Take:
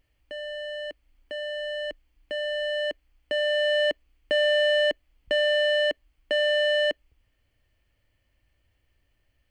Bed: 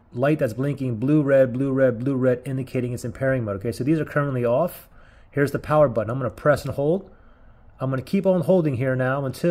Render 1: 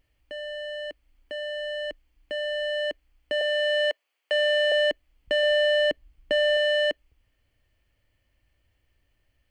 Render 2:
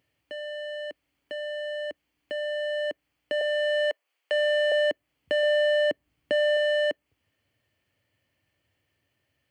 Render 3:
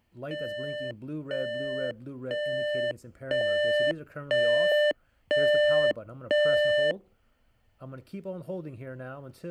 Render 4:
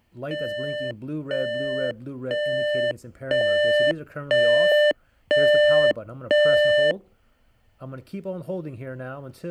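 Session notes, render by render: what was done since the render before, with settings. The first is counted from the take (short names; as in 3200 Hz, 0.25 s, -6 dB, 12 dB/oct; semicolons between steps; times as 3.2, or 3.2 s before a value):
3.41–4.72 HPF 510 Hz 24 dB/oct; 5.43–6.57 low shelf 270 Hz +9.5 dB
HPF 100 Hz 24 dB/oct; dynamic EQ 3700 Hz, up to -6 dB, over -42 dBFS, Q 0.72
add bed -18 dB
gain +5.5 dB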